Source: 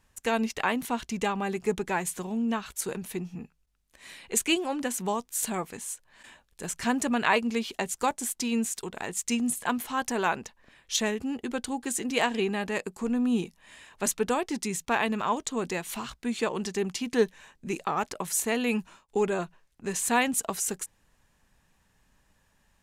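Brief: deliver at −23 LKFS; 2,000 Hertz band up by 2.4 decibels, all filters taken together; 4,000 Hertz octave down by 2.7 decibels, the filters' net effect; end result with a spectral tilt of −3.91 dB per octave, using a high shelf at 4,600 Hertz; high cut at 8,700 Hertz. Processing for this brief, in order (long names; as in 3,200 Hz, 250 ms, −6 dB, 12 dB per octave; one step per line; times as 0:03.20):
low-pass filter 8,700 Hz
parametric band 2,000 Hz +5 dB
parametric band 4,000 Hz −3.5 dB
high-shelf EQ 4,600 Hz −6 dB
level +6.5 dB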